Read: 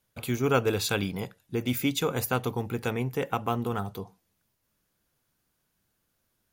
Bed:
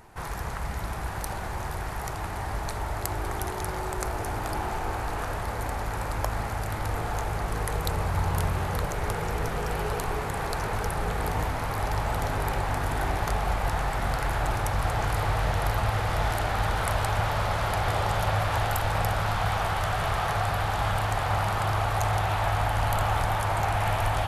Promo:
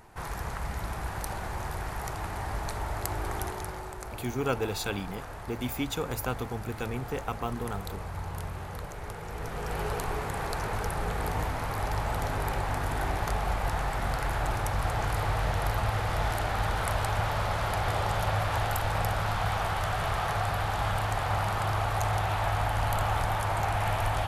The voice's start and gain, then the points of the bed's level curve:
3.95 s, -5.0 dB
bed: 3.41 s -2 dB
4 s -10 dB
9.23 s -10 dB
9.81 s -2.5 dB

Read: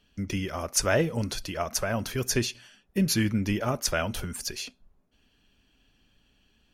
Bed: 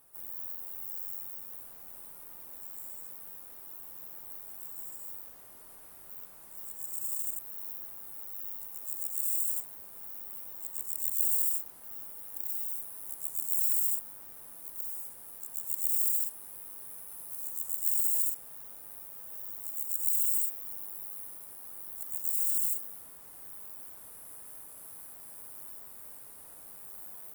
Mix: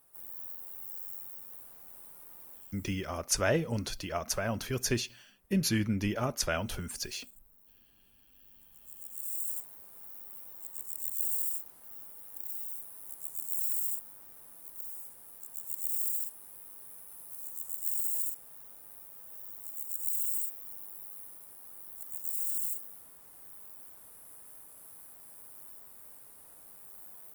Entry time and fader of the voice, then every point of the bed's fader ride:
2.55 s, -4.0 dB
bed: 2.5 s -3 dB
3.16 s -21 dB
8.31 s -21 dB
9.46 s -4 dB

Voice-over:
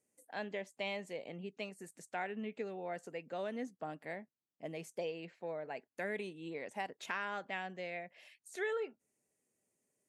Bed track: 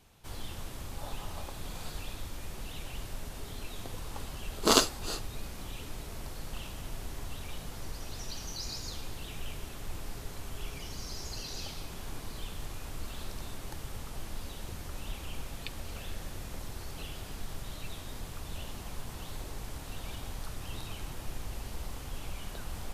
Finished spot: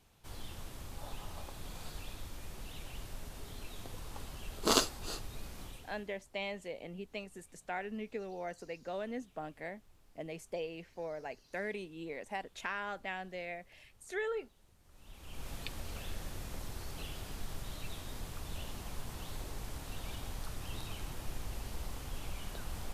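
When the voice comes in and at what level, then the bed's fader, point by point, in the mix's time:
5.55 s, +0.5 dB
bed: 5.64 s -5 dB
6.24 s -25.5 dB
14.79 s -25.5 dB
15.49 s -2 dB

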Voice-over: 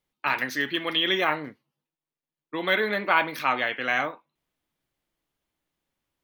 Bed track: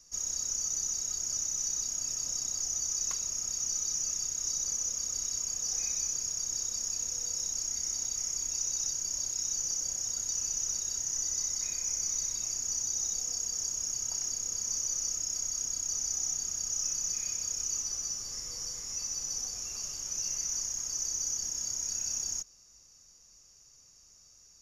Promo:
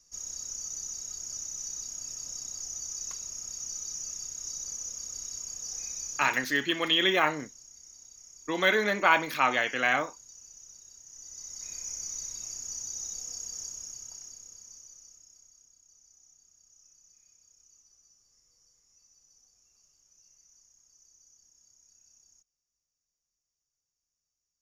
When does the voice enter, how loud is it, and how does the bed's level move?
5.95 s, -0.5 dB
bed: 6.16 s -5 dB
6.61 s -18 dB
11.04 s -18 dB
11.76 s -5 dB
13.6 s -5 dB
15.77 s -28 dB

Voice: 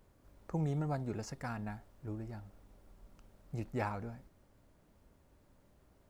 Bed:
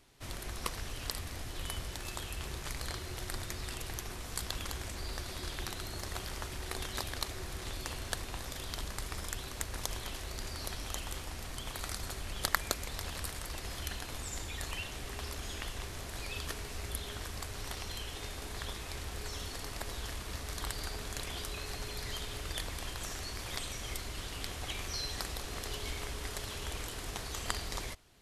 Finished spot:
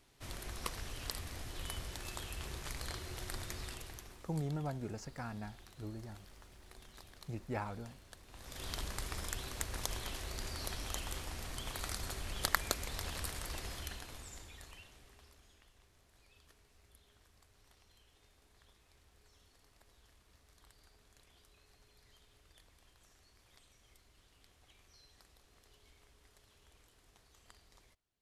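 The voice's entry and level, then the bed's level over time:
3.75 s, -3.0 dB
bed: 3.62 s -3.5 dB
4.47 s -19 dB
8.22 s -19 dB
8.66 s -1.5 dB
13.57 s -1.5 dB
15.65 s -26 dB

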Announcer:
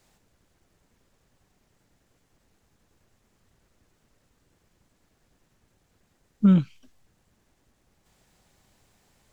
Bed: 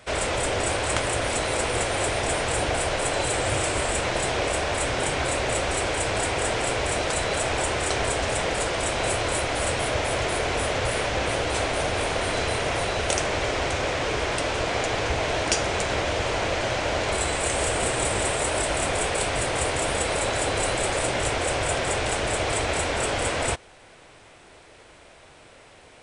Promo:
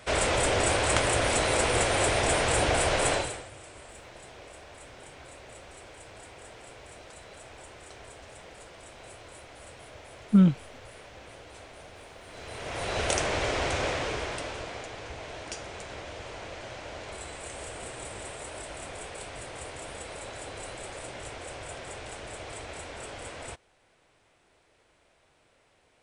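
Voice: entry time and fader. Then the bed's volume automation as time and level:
3.90 s, -1.0 dB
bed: 3.13 s 0 dB
3.5 s -22.5 dB
12.24 s -22.5 dB
12.99 s -3 dB
13.86 s -3 dB
14.92 s -15.5 dB

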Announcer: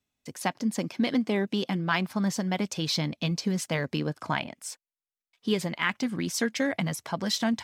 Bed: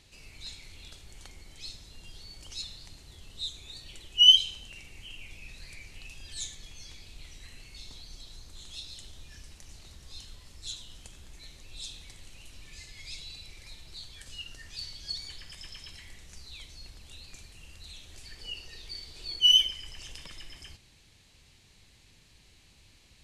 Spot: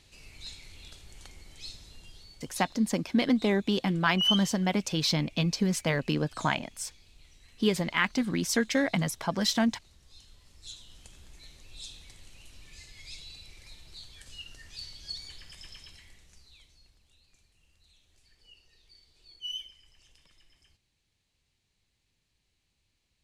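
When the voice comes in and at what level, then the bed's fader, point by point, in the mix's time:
2.15 s, +1.0 dB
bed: 1.9 s -0.5 dB
2.66 s -9.5 dB
10.1 s -9.5 dB
11.15 s -2.5 dB
15.73 s -2.5 dB
17.13 s -17.5 dB

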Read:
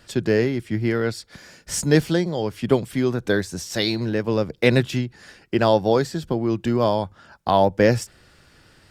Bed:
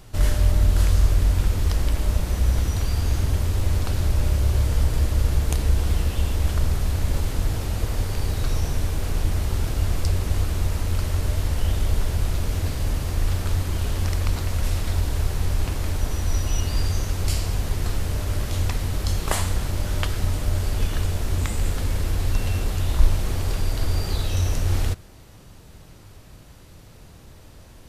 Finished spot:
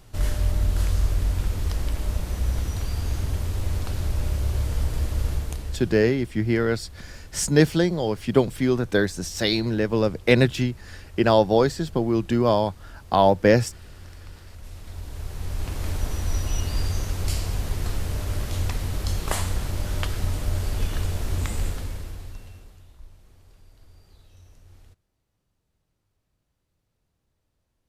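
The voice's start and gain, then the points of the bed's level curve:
5.65 s, 0.0 dB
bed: 5.31 s -4.5 dB
6.12 s -20 dB
14.48 s -20 dB
15.87 s -2.5 dB
21.61 s -2.5 dB
22.98 s -29.5 dB

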